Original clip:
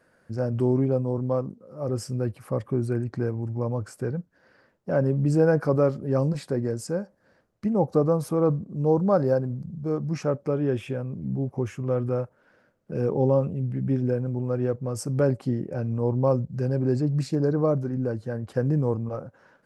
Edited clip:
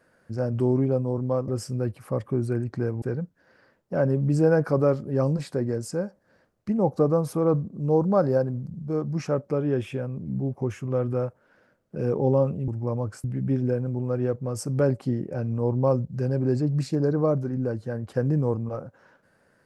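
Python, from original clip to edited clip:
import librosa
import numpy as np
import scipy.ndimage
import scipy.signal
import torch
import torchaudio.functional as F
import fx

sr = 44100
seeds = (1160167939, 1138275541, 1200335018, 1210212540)

y = fx.edit(x, sr, fx.cut(start_s=1.48, length_s=0.4),
    fx.move(start_s=3.42, length_s=0.56, to_s=13.64), tone=tone)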